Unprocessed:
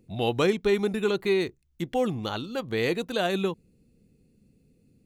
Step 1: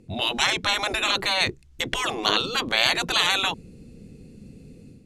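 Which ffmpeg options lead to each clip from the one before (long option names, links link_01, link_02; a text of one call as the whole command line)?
ffmpeg -i in.wav -af "dynaudnorm=framelen=100:gausssize=5:maxgain=9dB,lowpass=9000,afftfilt=real='re*lt(hypot(re,im),0.178)':imag='im*lt(hypot(re,im),0.178)':win_size=1024:overlap=0.75,volume=8dB" out.wav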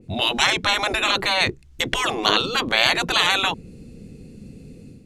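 ffmpeg -i in.wav -af "adynamicequalizer=threshold=0.0178:dfrequency=3200:dqfactor=0.7:tfrequency=3200:tqfactor=0.7:attack=5:release=100:ratio=0.375:range=2:mode=cutabove:tftype=highshelf,volume=4dB" out.wav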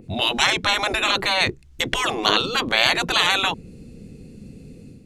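ffmpeg -i in.wav -af "acompressor=mode=upward:threshold=-42dB:ratio=2.5" out.wav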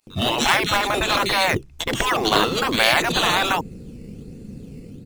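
ffmpeg -i in.wav -filter_complex "[0:a]acrossover=split=2900[link_01][link_02];[link_01]adelay=70[link_03];[link_03][link_02]amix=inputs=2:normalize=0,asplit=2[link_04][link_05];[link_05]acrusher=samples=12:mix=1:aa=0.000001:lfo=1:lforange=12:lforate=1.3,volume=-5.5dB[link_06];[link_04][link_06]amix=inputs=2:normalize=0" out.wav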